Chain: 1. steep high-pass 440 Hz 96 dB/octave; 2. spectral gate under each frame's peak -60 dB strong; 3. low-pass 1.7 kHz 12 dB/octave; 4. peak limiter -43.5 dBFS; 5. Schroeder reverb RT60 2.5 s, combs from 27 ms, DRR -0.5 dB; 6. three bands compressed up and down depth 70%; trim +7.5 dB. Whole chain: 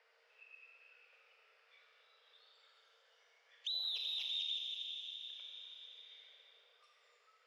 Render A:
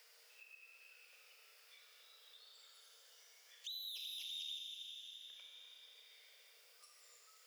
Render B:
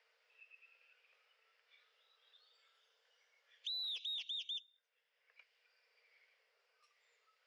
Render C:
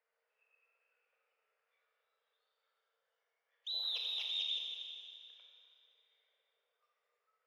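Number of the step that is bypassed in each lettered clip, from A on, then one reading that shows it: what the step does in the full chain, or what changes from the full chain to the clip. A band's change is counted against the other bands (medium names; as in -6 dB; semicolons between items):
3, momentary loudness spread change -3 LU; 5, momentary loudness spread change -15 LU; 6, momentary loudness spread change -5 LU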